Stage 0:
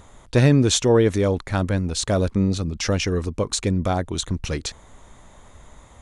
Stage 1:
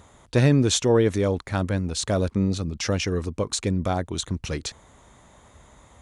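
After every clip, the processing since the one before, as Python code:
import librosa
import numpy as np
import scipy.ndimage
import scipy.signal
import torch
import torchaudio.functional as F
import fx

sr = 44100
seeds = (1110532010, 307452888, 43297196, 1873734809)

y = scipy.signal.sosfilt(scipy.signal.butter(2, 55.0, 'highpass', fs=sr, output='sos'), x)
y = y * librosa.db_to_amplitude(-2.5)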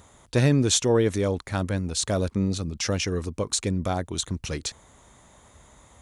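y = fx.high_shelf(x, sr, hz=5700.0, db=7.0)
y = y * librosa.db_to_amplitude(-2.0)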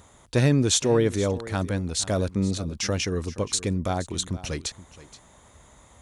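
y = x + 10.0 ** (-17.0 / 20.0) * np.pad(x, (int(474 * sr / 1000.0), 0))[:len(x)]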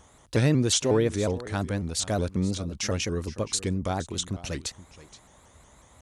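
y = fx.vibrato_shape(x, sr, shape='saw_up', rate_hz=5.5, depth_cents=160.0)
y = y * librosa.db_to_amplitude(-2.0)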